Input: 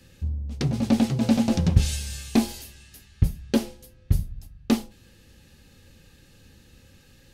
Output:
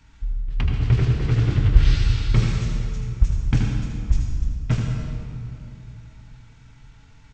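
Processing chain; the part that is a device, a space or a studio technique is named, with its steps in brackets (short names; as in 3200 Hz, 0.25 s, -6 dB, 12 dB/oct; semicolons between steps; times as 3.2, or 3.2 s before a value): monster voice (pitch shift -11 st; low shelf 120 Hz +5 dB; echo 78 ms -7.5 dB; reverb RT60 2.6 s, pre-delay 74 ms, DRR 2 dB); gain -1.5 dB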